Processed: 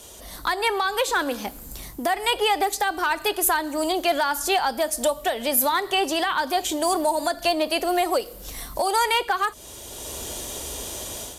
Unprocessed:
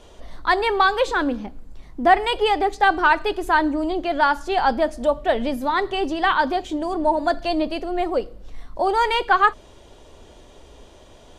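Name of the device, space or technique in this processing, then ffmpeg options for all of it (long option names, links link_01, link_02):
FM broadcast chain: -filter_complex "[0:a]highpass=46,dynaudnorm=framelen=220:gausssize=3:maxgain=11dB,acrossover=split=450|3000[link_01][link_02][link_03];[link_01]acompressor=threshold=-34dB:ratio=4[link_04];[link_02]acompressor=threshold=-17dB:ratio=4[link_05];[link_03]acompressor=threshold=-39dB:ratio=4[link_06];[link_04][link_05][link_06]amix=inputs=3:normalize=0,aemphasis=mode=production:type=50fm,alimiter=limit=-13dB:level=0:latency=1:release=278,asoftclip=type=hard:threshold=-14dB,lowpass=frequency=15000:width=0.5412,lowpass=frequency=15000:width=1.3066,aemphasis=mode=production:type=50fm"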